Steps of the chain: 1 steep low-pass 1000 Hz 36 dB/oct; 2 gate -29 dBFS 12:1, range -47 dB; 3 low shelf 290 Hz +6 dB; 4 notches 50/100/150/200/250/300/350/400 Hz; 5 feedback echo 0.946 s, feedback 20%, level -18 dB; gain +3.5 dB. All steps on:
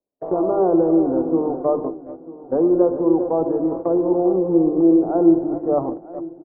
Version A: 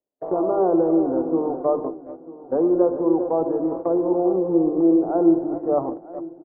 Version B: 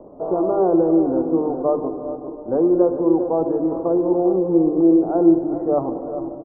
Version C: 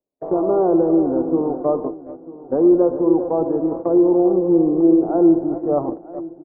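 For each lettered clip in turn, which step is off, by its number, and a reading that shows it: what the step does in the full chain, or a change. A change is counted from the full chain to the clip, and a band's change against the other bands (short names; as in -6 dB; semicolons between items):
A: 3, 125 Hz band -2.5 dB; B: 2, momentary loudness spread change -2 LU; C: 4, crest factor change -2.0 dB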